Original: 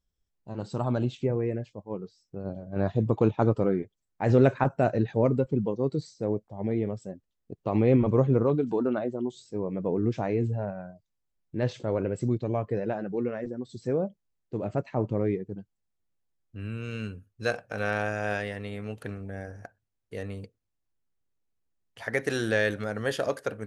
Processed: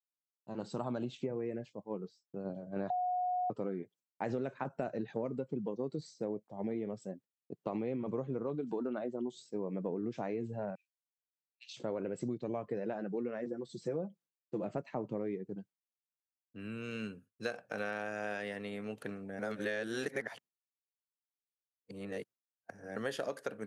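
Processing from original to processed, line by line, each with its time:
2.9–3.5 bleep 726 Hz -17 dBFS
10.75–11.77 steep high-pass 2400 Hz 72 dB/oct
13.51–14.65 comb 5.9 ms
19.39–22.96 reverse
whole clip: expander -48 dBFS; HPF 150 Hz 24 dB/oct; compressor 10:1, threshold -29 dBFS; gain -3.5 dB

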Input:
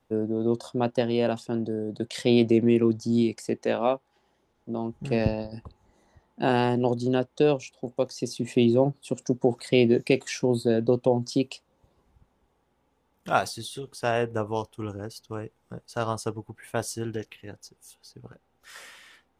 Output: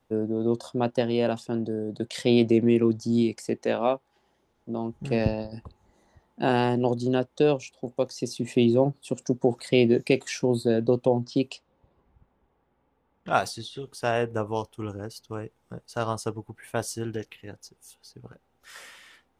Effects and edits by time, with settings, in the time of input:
11.21–13.8 low-pass opened by the level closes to 2400 Hz, open at -21.5 dBFS

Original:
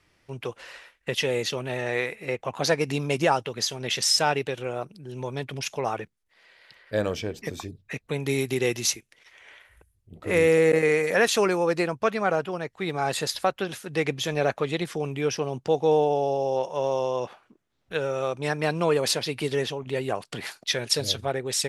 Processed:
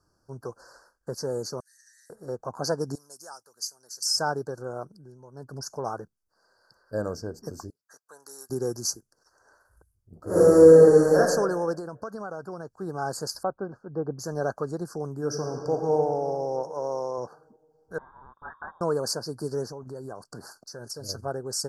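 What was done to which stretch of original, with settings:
1.6–2.1 rippled Chebyshev high-pass 1800 Hz, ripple 3 dB
2.95–4.06 differentiator
4.92–5.57 dip -13.5 dB, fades 0.26 s
7.7–8.5 HPF 1300 Hz
10.25–11.17 reverb throw, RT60 1.2 s, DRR -9 dB
11.78–12.78 compressor, threshold -27 dBFS
13.43–14.19 LPF 1100 Hz
15.15–15.92 reverb throw, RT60 2.9 s, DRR 2.5 dB
16.7–17.18 low shelf 150 Hz -9.5 dB
17.98–18.81 inverted band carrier 3500 Hz
19.71–21.09 compressor 4:1, threshold -31 dBFS
whole clip: Chebyshev band-stop 1600–4500 Hz, order 5; gain -3 dB

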